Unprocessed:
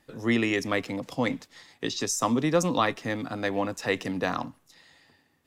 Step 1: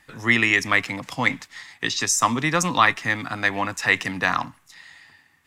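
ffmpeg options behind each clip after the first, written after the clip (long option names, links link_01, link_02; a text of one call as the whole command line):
ffmpeg -i in.wav -af "equalizer=frequency=250:width_type=o:width=1:gain=-4,equalizer=frequency=500:width_type=o:width=1:gain=-9,equalizer=frequency=1000:width_type=o:width=1:gain=4,equalizer=frequency=2000:width_type=o:width=1:gain=8,equalizer=frequency=8000:width_type=o:width=1:gain=4,volume=4.5dB" out.wav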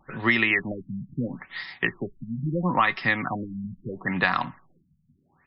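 ffmpeg -i in.wav -af "aecho=1:1:5.3:0.38,acompressor=threshold=-22dB:ratio=4,afftfilt=real='re*lt(b*sr/1024,220*pow(5500/220,0.5+0.5*sin(2*PI*0.75*pts/sr)))':imag='im*lt(b*sr/1024,220*pow(5500/220,0.5+0.5*sin(2*PI*0.75*pts/sr)))':win_size=1024:overlap=0.75,volume=3.5dB" out.wav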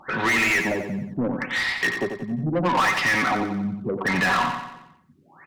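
ffmpeg -i in.wav -filter_complex "[0:a]asoftclip=type=tanh:threshold=-11dB,asplit=2[link_01][link_02];[link_02]highpass=frequency=720:poles=1,volume=27dB,asoftclip=type=tanh:threshold=-11dB[link_03];[link_01][link_03]amix=inputs=2:normalize=0,lowpass=frequency=4000:poles=1,volume=-6dB,aecho=1:1:90|180|270|360|450|540:0.447|0.219|0.107|0.0526|0.0258|0.0126,volume=-3.5dB" out.wav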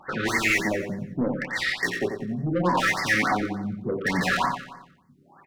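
ffmpeg -i in.wav -filter_complex "[0:a]asplit=2[link_01][link_02];[link_02]adelay=28,volume=-6.5dB[link_03];[link_01][link_03]amix=inputs=2:normalize=0,afftfilt=real='re*(1-between(b*sr/1024,810*pow(3100/810,0.5+0.5*sin(2*PI*3.4*pts/sr))/1.41,810*pow(3100/810,0.5+0.5*sin(2*PI*3.4*pts/sr))*1.41))':imag='im*(1-between(b*sr/1024,810*pow(3100/810,0.5+0.5*sin(2*PI*3.4*pts/sr))/1.41,810*pow(3100/810,0.5+0.5*sin(2*PI*3.4*pts/sr))*1.41))':win_size=1024:overlap=0.75,volume=-1.5dB" out.wav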